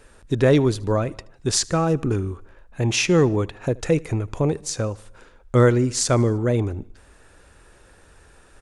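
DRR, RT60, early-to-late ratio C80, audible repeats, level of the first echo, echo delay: none, none, none, 3, -24.0 dB, 76 ms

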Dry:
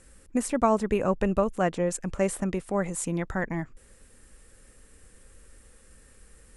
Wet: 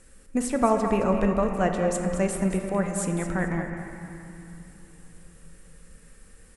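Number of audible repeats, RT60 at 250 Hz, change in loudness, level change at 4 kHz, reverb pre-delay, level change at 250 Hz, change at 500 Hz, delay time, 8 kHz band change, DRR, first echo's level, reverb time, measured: 2, 4.0 s, +2.0 dB, +1.5 dB, 4 ms, +3.0 dB, +1.5 dB, 0.217 s, +1.0 dB, 3.0 dB, -10.5 dB, 2.9 s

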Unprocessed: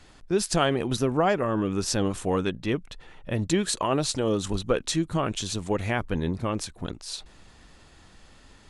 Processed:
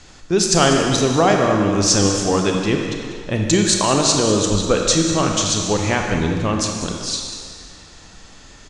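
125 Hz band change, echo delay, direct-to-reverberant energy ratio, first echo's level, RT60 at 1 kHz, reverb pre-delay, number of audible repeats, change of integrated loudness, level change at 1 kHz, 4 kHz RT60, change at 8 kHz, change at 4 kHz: +8.5 dB, 0.195 s, 1.5 dB, -11.5 dB, 2.1 s, 25 ms, 1, +9.5 dB, +9.0 dB, 1.9 s, +14.5 dB, +12.0 dB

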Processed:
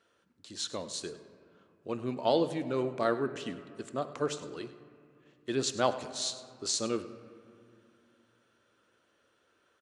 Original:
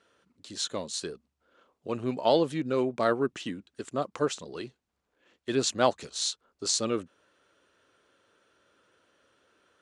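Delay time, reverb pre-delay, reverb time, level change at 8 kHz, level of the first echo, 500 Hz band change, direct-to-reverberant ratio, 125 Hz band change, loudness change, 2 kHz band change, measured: 0.101 s, 3 ms, 2.3 s, -4.0 dB, -17.0 dB, -3.5 dB, 10.0 dB, -3.0 dB, -3.5 dB, -3.5 dB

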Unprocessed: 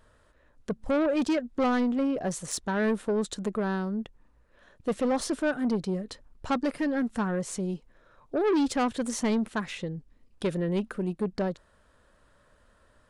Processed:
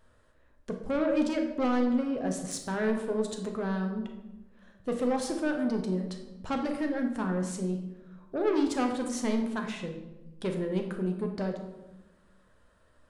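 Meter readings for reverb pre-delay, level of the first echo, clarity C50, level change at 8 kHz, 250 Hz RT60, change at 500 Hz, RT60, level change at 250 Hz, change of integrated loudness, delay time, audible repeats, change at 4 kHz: 8 ms, none, 6.5 dB, -3.5 dB, 1.6 s, -2.0 dB, 1.0 s, -1.5 dB, -2.0 dB, none, none, -3.0 dB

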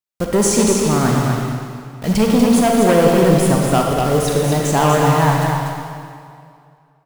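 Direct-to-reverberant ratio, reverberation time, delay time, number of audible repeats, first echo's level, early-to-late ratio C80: -1.5 dB, 2.3 s, 0.242 s, 1, -5.0 dB, 0.0 dB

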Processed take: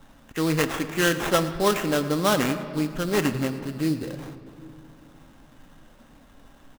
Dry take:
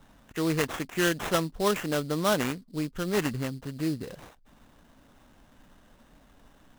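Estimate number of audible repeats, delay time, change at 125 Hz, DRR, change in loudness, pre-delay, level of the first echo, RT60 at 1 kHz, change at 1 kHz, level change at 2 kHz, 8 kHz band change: 1, 0.111 s, +4.0 dB, 8.0 dB, +4.5 dB, 4 ms, -17.5 dB, 2.7 s, +5.0 dB, +4.5 dB, +4.5 dB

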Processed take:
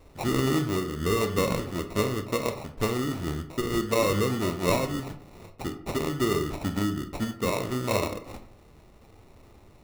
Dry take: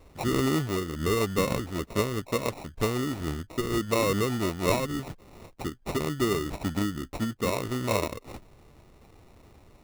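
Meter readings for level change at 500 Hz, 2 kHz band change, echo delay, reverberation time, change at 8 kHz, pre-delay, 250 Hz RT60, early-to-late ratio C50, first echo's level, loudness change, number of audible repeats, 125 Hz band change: +1.0 dB, +0.5 dB, none, 0.60 s, +0.5 dB, 22 ms, 0.65 s, 11.0 dB, none, +1.0 dB, none, +1.0 dB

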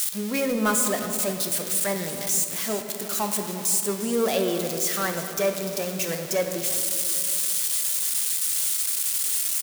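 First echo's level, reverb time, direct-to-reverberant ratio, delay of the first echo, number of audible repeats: -14.5 dB, 2.5 s, 4.5 dB, 0.353 s, 1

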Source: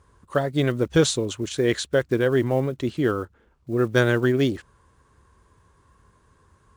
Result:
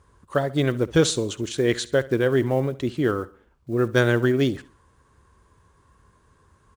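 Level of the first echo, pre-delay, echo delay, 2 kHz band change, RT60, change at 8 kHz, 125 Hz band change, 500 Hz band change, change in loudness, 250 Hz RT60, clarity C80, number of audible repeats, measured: -19.5 dB, none, 67 ms, 0.0 dB, none, 0.0 dB, 0.0 dB, 0.0 dB, 0.0 dB, none, none, 3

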